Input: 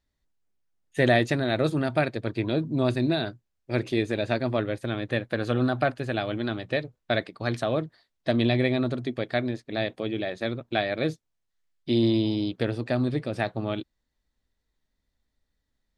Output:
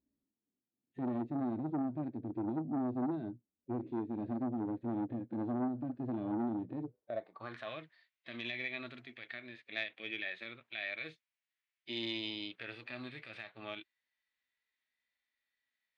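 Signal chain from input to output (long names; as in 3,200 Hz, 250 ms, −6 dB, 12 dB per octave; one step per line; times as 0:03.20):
dynamic equaliser 610 Hz, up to −3 dB, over −32 dBFS, Q 0.8
band-pass filter sweep 270 Hz → 2,300 Hz, 0:06.78–0:07.76
downward compressor 12 to 1, threshold −37 dBFS, peak gain reduction 14 dB
harmonic and percussive parts rebalanced percussive −17 dB
saturating transformer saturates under 600 Hz
level +8.5 dB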